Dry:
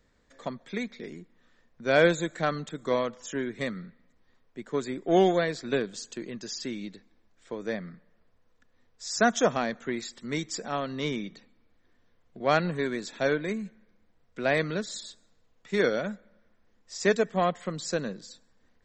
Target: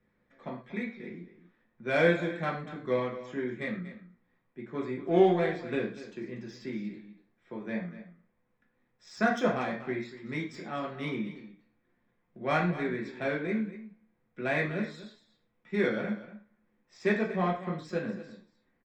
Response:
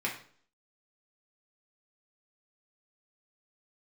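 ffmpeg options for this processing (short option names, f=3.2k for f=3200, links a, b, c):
-filter_complex "[0:a]adynamicsmooth=sensitivity=2:basefreq=3.1k,aecho=1:1:238:0.188[a];[1:a]atrim=start_sample=2205,atrim=end_sample=6174[b];[a][b]afir=irnorm=-1:irlink=0,volume=-8dB"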